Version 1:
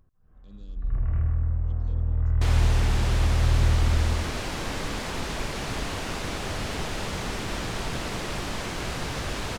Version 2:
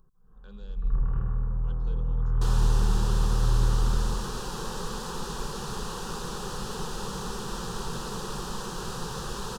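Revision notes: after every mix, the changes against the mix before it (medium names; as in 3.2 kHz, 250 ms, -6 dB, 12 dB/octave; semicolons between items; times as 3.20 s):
speech: remove Chebyshev band-stop 290–5500 Hz, order 2; first sound +4.0 dB; master: add static phaser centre 430 Hz, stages 8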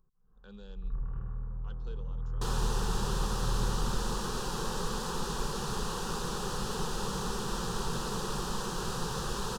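first sound -9.5 dB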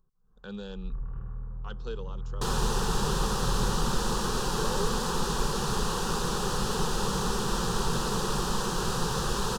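speech +11.5 dB; second sound +5.5 dB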